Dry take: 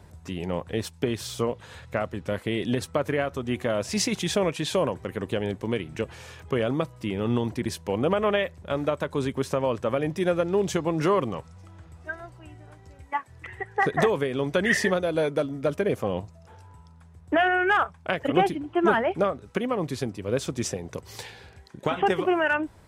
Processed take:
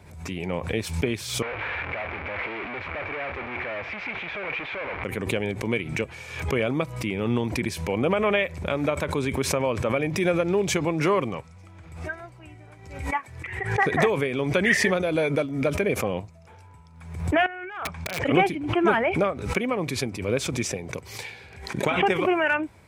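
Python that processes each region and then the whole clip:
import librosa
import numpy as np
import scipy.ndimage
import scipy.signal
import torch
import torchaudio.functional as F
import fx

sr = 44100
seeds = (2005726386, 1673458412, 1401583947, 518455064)

y = fx.chain(x, sr, fx.clip_1bit(),
    fx.lowpass(hz=2400.0, slope=24),
    fx.peak_eq(hz=160.0, db=-15.0, octaves=2.4), at=(1.42, 5.04))
y = fx.chain(y, sr, fx.lowpass(hz=6700.0, slope=12),
    fx.over_compress(threshold_db=-35.0, ratio=-1.0),
    fx.overflow_wrap(gain_db=23.0), at=(17.46, 18.28))
y = scipy.signal.sosfilt(scipy.signal.butter(2, 59.0, 'highpass', fs=sr, output='sos'), y)
y = fx.peak_eq(y, sr, hz=2300.0, db=13.0, octaves=0.2)
y = fx.pre_swell(y, sr, db_per_s=71.0)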